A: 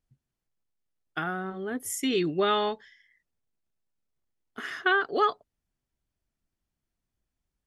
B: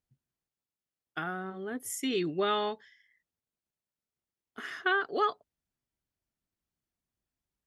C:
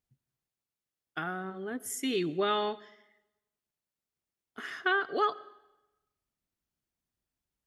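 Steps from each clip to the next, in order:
high-pass 79 Hz 6 dB/octave; trim -4 dB
reverberation RT60 1.0 s, pre-delay 50 ms, DRR 19.5 dB

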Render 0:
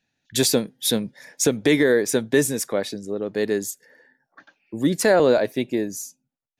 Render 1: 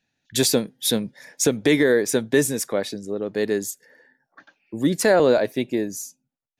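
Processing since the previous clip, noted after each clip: no audible change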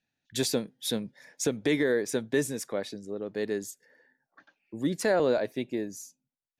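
treble shelf 10 kHz -7.5 dB; trim -8 dB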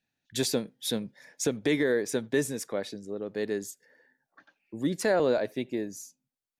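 speakerphone echo 80 ms, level -28 dB

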